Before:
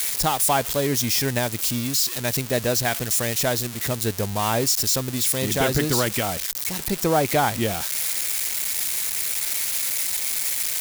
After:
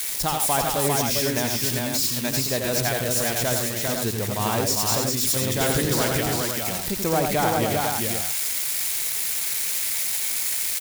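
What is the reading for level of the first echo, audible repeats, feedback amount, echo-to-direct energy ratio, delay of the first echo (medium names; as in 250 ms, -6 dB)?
-5.0 dB, 4, no regular repeats, 0.5 dB, 86 ms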